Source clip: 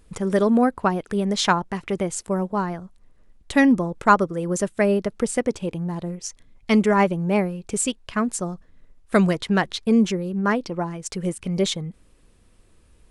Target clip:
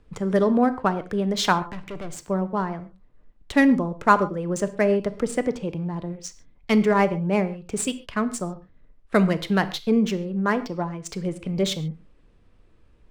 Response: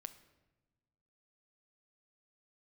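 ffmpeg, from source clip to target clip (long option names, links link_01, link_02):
-filter_complex "[0:a]acrossover=split=160|750[link_01][link_02][link_03];[link_03]adynamicsmooth=sensitivity=6:basefreq=3700[link_04];[link_01][link_02][link_04]amix=inputs=3:normalize=0,asettb=1/sr,asplit=3[link_05][link_06][link_07];[link_05]atrim=end=1.724[link_08];[link_06]atrim=start=1.72:end=2.24,asetpts=PTS-STARTPTS,afade=type=in:duration=0.004:curve=qsin,afade=type=out:start_time=0.516:duration=0.004:curve=qsin,aeval=exprs='(tanh(31.6*val(0)+0.35)-tanh(0.35))/31.6':channel_layout=same[link_09];[link_07]atrim=start=2.236[link_10];[link_08][link_09]acrossfade=duration=0.004:curve1=hsin:curve2=qsin[link_11];[link_11][link_10]acrossfade=duration=0.004:curve1=qsin:curve2=hsin[link_12];[1:a]atrim=start_sample=2205,atrim=end_sample=6615[link_13];[link_12][link_13]afir=irnorm=-1:irlink=0,volume=4dB"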